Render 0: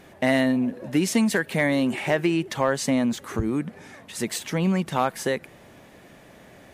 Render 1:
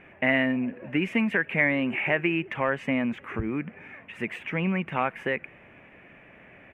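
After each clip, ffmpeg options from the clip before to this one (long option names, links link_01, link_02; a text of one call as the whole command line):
ffmpeg -i in.wav -af "firequalizer=gain_entry='entry(830,0);entry(2500,11);entry(4100,-24)':delay=0.05:min_phase=1,volume=-4.5dB" out.wav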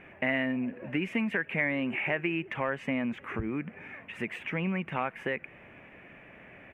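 ffmpeg -i in.wav -af "acompressor=threshold=-35dB:ratio=1.5" out.wav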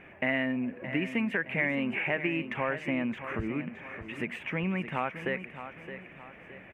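ffmpeg -i in.wav -af "aecho=1:1:618|1236|1854|2472:0.282|0.113|0.0451|0.018" out.wav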